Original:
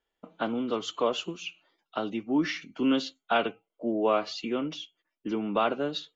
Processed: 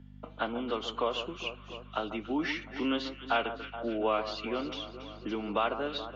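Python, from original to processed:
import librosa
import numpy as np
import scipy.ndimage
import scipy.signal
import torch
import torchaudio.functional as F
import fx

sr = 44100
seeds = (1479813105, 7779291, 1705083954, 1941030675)

y = scipy.signal.sosfilt(scipy.signal.butter(2, 4000.0, 'lowpass', fs=sr, output='sos'), x)
y = fx.low_shelf(y, sr, hz=370.0, db=-10.5)
y = fx.add_hum(y, sr, base_hz=50, snr_db=22)
y = fx.echo_alternate(y, sr, ms=140, hz=1400.0, feedback_pct=71, wet_db=-11.0)
y = fx.band_squash(y, sr, depth_pct=40)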